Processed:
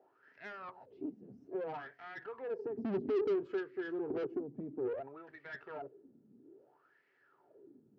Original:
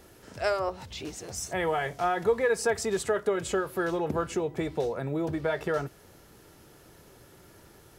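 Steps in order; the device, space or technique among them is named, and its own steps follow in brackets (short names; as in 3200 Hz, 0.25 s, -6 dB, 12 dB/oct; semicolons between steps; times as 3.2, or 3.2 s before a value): 2.77–4.27 resonant low shelf 520 Hz +11.5 dB, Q 3; wah-wah guitar rig (wah 0.6 Hz 210–2000 Hz, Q 7.5; tube stage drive 39 dB, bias 0.4; speaker cabinet 100–4600 Hz, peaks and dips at 130 Hz +8 dB, 270 Hz +8 dB, 400 Hz +9 dB, 1100 Hz -4 dB, 2100 Hz -5 dB, 3600 Hz -7 dB); gain +1.5 dB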